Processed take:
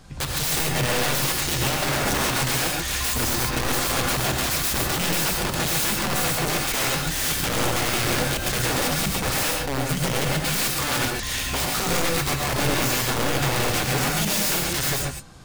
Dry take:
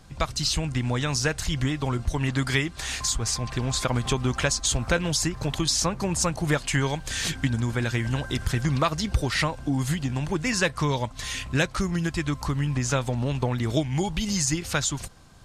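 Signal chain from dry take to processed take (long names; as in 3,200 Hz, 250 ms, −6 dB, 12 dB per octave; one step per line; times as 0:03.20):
0:01.89–0:02.29: low shelf with overshoot 170 Hz +9.5 dB, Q 1.5
0:09.51–0:09.97: downward compressor 2 to 1, threshold −31 dBFS, peak gain reduction 6 dB
wrap-around overflow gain 24 dB
reverb whose tail is shaped and stops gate 160 ms rising, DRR −0.5 dB
level +3 dB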